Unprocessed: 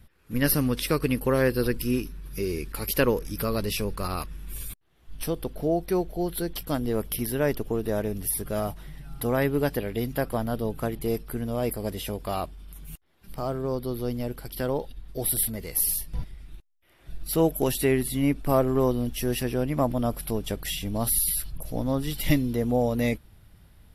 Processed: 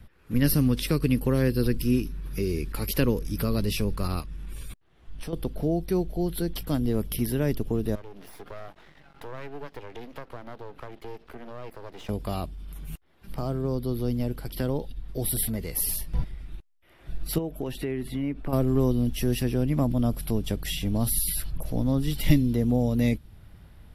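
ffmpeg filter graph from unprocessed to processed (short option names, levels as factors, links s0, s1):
-filter_complex "[0:a]asettb=1/sr,asplit=3[s0][s1][s2];[s0]atrim=end=4.204[s3];[s1]atrim=start=4.2:end=5.33,asetpts=PTS-STARTPTS,afade=t=in:d=0.004:c=qsin,afade=t=out:st=1.126:d=0.004:c=qsin,equalizer=f=13000:w=2.4:g=-11,acompressor=threshold=0.0126:ratio=2.5:attack=3.2:release=140:knee=1:detection=peak[s4];[s2]atrim=start=5.326[s5];[s3][s4]acrossfade=d=0.004:c1=hsin:c2=qsin[s6];[s6][s5]acrossfade=d=0.004:c1=qsin:c2=hsin,asettb=1/sr,asplit=3[s7][s8][s9];[s7]atrim=end=7.954[s10];[s8]atrim=start=7.95:end=12.09,asetpts=PTS-STARTPTS,afade=t=in:d=0.004:c=qsin,afade=t=out:st=4.136:d=0.004:c=qsin,acrossover=split=260 4800:gain=0.0891 1 0.158[s11][s12][s13];[s11][s12][s13]amix=inputs=3:normalize=0,aeval=exprs='max(val(0),0)':c=same,acompressor=threshold=0.00794:ratio=2:attack=3.2:release=140:knee=1:detection=peak[s14];[s9]atrim=start=12.086[s15];[s10][s14]acrossfade=d=0.004:c1=hsin:c2=qsin[s16];[s16][s15]acrossfade=d=0.004:c1=qsin:c2=hsin,asettb=1/sr,asplit=3[s17][s18][s19];[s17]atrim=end=17.384[s20];[s18]atrim=start=17.38:end=18.53,asetpts=PTS-STARTPTS,afade=t=in:d=0.004:c=qsin,afade=t=out:st=1.146:d=0.004:c=qsin,bass=f=250:g=-5,treble=f=4000:g=-14,acompressor=threshold=0.0316:ratio=2.5:attack=3.2:release=140:knee=1:detection=peak[s21];[s19]atrim=start=18.526[s22];[s20][s21]acrossfade=d=0.004:c1=hsin:c2=qsin[s23];[s23][s22]acrossfade=d=0.004:c1=qsin:c2=hsin,highshelf=f=4300:g=-8.5,acrossover=split=310|3000[s24][s25][s26];[s25]acompressor=threshold=0.00562:ratio=2[s27];[s24][s27][s26]amix=inputs=3:normalize=0,volume=1.68"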